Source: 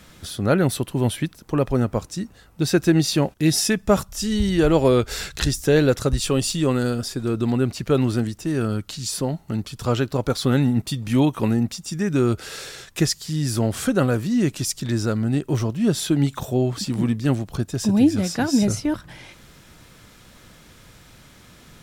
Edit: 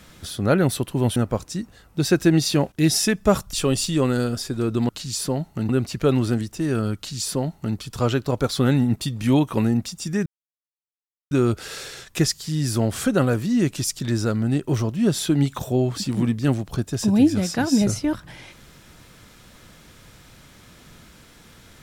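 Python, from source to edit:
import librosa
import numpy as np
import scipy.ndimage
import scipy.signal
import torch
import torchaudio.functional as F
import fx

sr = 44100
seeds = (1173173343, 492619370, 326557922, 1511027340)

y = fx.edit(x, sr, fx.cut(start_s=1.16, length_s=0.62),
    fx.cut(start_s=4.15, length_s=2.04),
    fx.duplicate(start_s=8.82, length_s=0.8, to_s=7.55),
    fx.insert_silence(at_s=12.12, length_s=1.05), tone=tone)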